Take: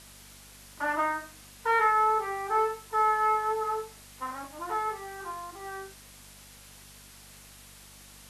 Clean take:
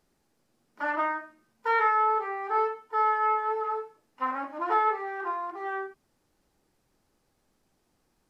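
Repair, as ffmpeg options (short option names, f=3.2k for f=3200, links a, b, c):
-af "bandreject=f=49:t=h:w=4,bandreject=f=98:t=h:w=4,bandreject=f=147:t=h:w=4,bandreject=f=196:t=h:w=4,bandreject=f=245:t=h:w=4,afwtdn=0.0032,asetnsamples=n=441:p=0,asendcmd='4.14 volume volume 6.5dB',volume=0dB"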